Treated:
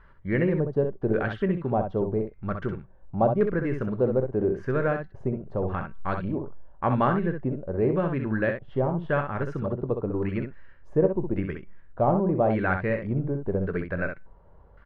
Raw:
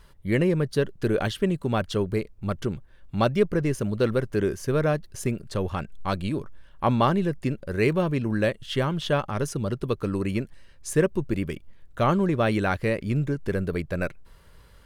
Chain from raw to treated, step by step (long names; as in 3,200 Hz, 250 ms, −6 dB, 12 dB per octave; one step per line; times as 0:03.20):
dynamic equaliser 1,300 Hz, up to −4 dB, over −37 dBFS, Q 1.1
tuned comb filter 190 Hz, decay 0.4 s, harmonics all, mix 30%
auto-filter low-pass square 0.88 Hz 790–1,600 Hz
ambience of single reflections 23 ms −15.5 dB, 64 ms −6.5 dB